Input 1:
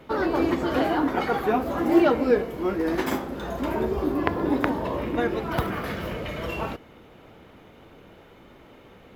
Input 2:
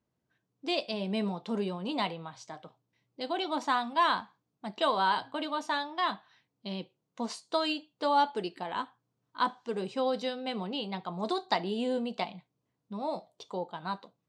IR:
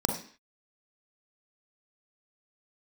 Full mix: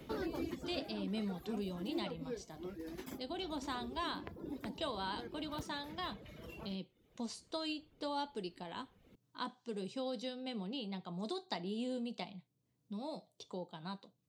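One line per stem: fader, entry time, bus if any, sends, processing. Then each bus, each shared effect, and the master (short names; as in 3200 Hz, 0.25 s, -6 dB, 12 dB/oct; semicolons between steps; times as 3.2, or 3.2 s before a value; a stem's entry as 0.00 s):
-5.5 dB, 0.00 s, no send, reverb removal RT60 0.78 s; auto duck -12 dB, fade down 0.95 s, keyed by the second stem
-4.0 dB, 0.00 s, no send, dry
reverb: off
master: bell 1100 Hz -11 dB 2.7 oct; three-band squash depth 40%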